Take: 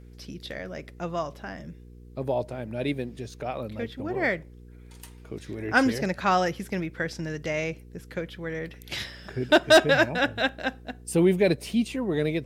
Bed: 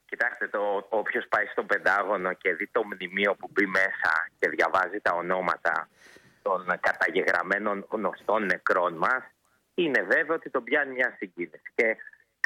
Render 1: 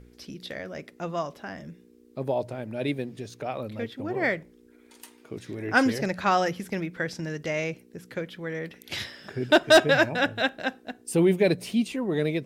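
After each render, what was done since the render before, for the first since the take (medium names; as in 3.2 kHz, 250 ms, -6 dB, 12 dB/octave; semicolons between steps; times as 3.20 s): de-hum 60 Hz, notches 3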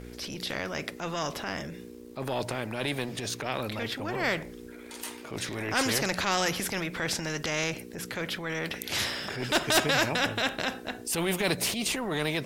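transient shaper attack -7 dB, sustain +3 dB; spectrum-flattening compressor 2:1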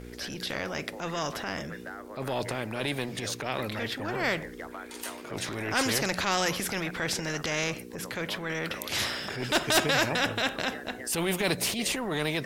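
add bed -19 dB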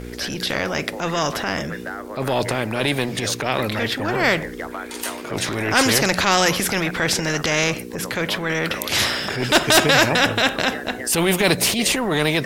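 trim +10 dB; peak limiter -1 dBFS, peak gain reduction 1.5 dB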